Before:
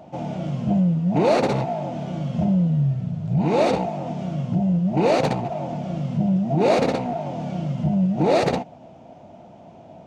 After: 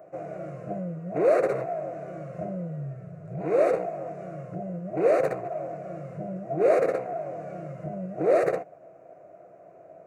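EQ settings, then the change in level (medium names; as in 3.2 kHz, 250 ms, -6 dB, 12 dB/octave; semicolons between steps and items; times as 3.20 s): high-pass 240 Hz 12 dB/octave; peaking EQ 5.1 kHz -14.5 dB 1.2 oct; static phaser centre 880 Hz, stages 6; 0.0 dB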